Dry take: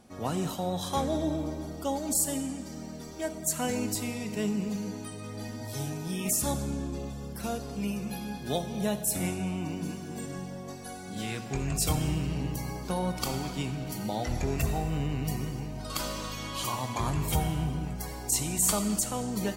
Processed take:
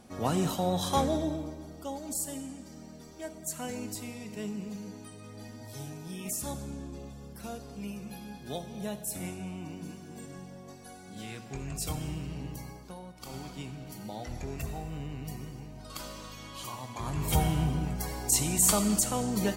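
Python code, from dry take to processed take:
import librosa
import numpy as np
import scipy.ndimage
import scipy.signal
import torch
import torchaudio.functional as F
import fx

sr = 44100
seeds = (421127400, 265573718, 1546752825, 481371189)

y = fx.gain(x, sr, db=fx.line((1.0, 2.5), (1.57, -7.0), (12.61, -7.0), (13.15, -18.0), (13.36, -8.0), (16.96, -8.0), (17.38, 2.0)))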